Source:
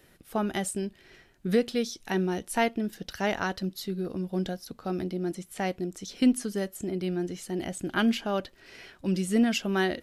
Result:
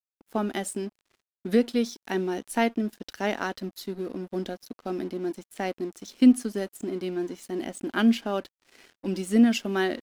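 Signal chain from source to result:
low shelf with overshoot 190 Hz −7 dB, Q 3
dead-zone distortion −48 dBFS

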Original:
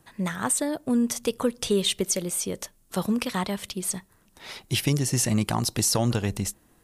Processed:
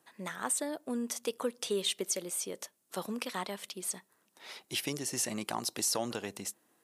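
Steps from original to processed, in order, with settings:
high-pass filter 310 Hz 12 dB per octave
level −7 dB

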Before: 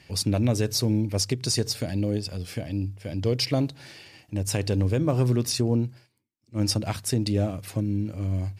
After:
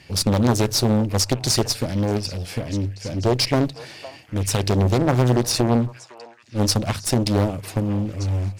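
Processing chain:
harmonic generator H 6 −19 dB, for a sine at −12.5 dBFS
echo through a band-pass that steps 508 ms, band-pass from 790 Hz, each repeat 1.4 octaves, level −11 dB
highs frequency-modulated by the lows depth 0.92 ms
level +5.5 dB

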